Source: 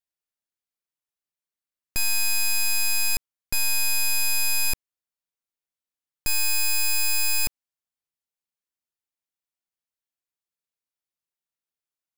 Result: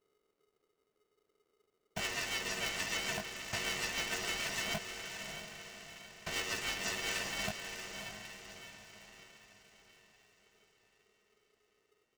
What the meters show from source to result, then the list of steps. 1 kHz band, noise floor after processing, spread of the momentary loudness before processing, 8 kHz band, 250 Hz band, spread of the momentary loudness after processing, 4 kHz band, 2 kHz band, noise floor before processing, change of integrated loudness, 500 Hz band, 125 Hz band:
-2.0 dB, -81 dBFS, 7 LU, -15.5 dB, +4.5 dB, 15 LU, -9.0 dB, -8.0 dB, under -85 dBFS, -14.0 dB, +8.0 dB, -4.5 dB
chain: vocoder on a held chord major triad, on A3; doubling 19 ms -4.5 dB; reverb removal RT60 2 s; treble shelf 5 kHz -7.5 dB; in parallel at -10 dB: sample-and-hold 39×; on the sum: peak limiter -25.5 dBFS, peak gain reduction 9.5 dB; rotary cabinet horn 6.7 Hz, later 1 Hz, at 6.53 s; on a send: echo that smears into a reverb 627 ms, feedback 48%, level -7 dB; on the sum: added noise brown -78 dBFS; polarity switched at an audio rate 420 Hz

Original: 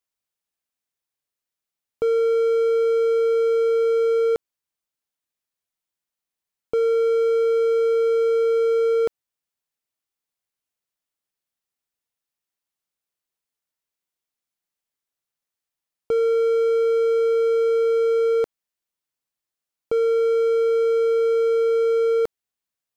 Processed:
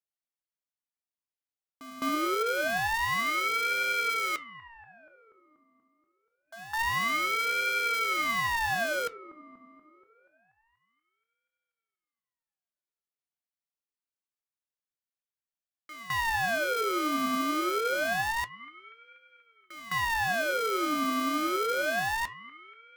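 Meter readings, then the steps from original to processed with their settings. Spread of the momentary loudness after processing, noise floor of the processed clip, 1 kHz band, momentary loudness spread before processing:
12 LU, under -85 dBFS, +6.0 dB, 4 LU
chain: square wave that keeps the level; spectral replace 6.48–6.79 s, 550–1600 Hz both; pre-echo 210 ms -14 dB; flange 1.9 Hz, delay 3.6 ms, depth 6.1 ms, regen +80%; on a send: feedback echo behind a low-pass 240 ms, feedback 61%, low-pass 780 Hz, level -13 dB; on the sum: ring modulator with a swept carrier 1.3 kHz, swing 45%, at 0.26 Hz; trim -8.5 dB

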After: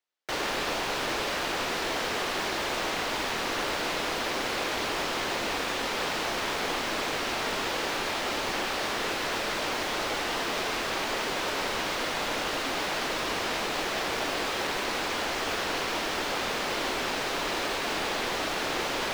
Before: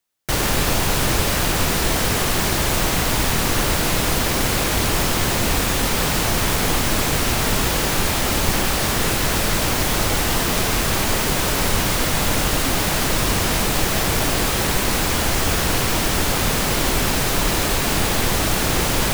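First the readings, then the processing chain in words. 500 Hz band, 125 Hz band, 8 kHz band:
-7.5 dB, -23.0 dB, -15.5 dB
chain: three-band isolator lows -19 dB, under 280 Hz, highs -16 dB, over 5.5 kHz; trim -6.5 dB

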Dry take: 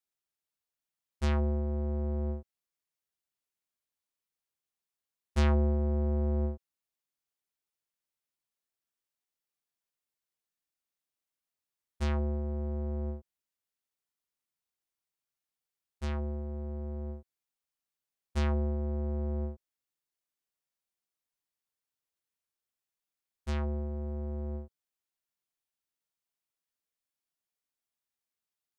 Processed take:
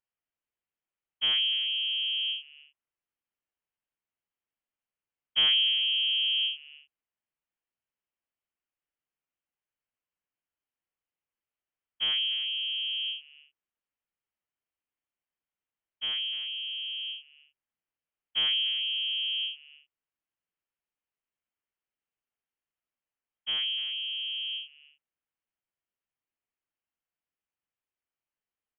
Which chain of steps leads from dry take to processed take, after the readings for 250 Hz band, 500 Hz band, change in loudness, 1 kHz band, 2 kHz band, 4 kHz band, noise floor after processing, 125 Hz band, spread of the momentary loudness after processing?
under -25 dB, under -20 dB, +6.5 dB, -8.5 dB, +12.0 dB, +30.0 dB, under -85 dBFS, under -35 dB, 11 LU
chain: speakerphone echo 300 ms, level -12 dB; frequency inversion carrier 3.2 kHz

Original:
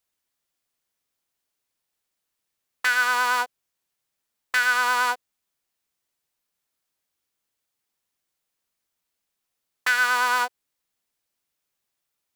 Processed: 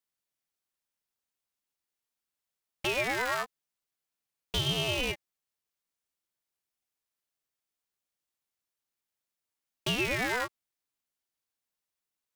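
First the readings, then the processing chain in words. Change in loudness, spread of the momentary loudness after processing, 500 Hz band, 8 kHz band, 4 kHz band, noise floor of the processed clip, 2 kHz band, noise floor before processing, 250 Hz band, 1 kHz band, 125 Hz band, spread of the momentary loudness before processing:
-8.5 dB, 9 LU, +4.5 dB, -8.0 dB, -1.5 dB, under -85 dBFS, -12.5 dB, -81 dBFS, +11.5 dB, -13.5 dB, no reading, 9 LU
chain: ring modulator with a swept carrier 950 Hz, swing 75%, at 0.42 Hz; trim -5.5 dB

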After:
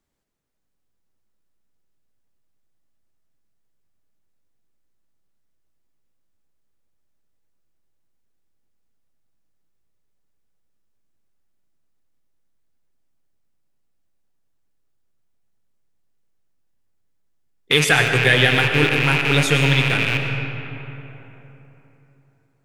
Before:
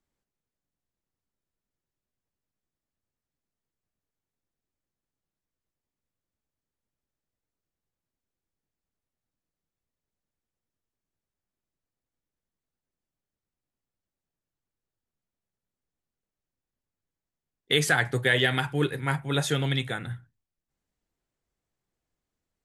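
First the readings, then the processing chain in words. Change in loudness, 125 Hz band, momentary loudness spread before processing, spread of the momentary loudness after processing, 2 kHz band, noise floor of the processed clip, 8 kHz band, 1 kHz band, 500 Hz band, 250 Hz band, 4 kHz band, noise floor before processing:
+9.0 dB, +9.0 dB, 11 LU, 14 LU, +10.5 dB, -67 dBFS, +7.0 dB, +8.0 dB, +7.5 dB, +8.0 dB, +9.0 dB, under -85 dBFS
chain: rattle on loud lows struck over -40 dBFS, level -15 dBFS; algorithmic reverb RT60 3.6 s, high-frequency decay 0.5×, pre-delay 65 ms, DRR 4 dB; trim +6 dB

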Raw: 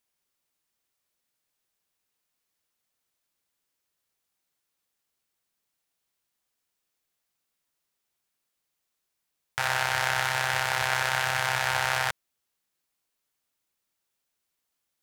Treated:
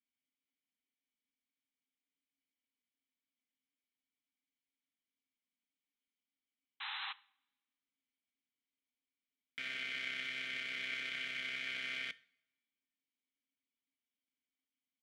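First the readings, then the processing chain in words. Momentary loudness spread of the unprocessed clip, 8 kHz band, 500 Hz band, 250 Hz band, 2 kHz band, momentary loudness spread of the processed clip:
6 LU, -25.0 dB, -23.5 dB, no reading, -12.5 dB, 7 LU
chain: vowel filter i; comb 4.4 ms, depth 97%; painted sound noise, 6.80–7.13 s, 770–4100 Hz -41 dBFS; two-slope reverb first 0.52 s, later 1.5 s, from -21 dB, DRR 17.5 dB; trim -1.5 dB

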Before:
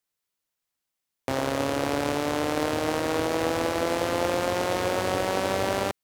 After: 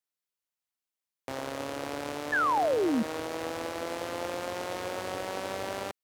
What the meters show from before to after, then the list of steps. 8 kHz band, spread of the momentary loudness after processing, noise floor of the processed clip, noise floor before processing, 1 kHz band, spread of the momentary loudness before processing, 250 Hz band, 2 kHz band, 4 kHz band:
-8.0 dB, 10 LU, under -85 dBFS, -84 dBFS, -3.5 dB, 1 LU, -5.5 dB, -3.5 dB, -8.0 dB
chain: bass shelf 260 Hz -5.5 dB; painted sound fall, 2.32–3.03 s, 210–1800 Hz -18 dBFS; trim -8 dB

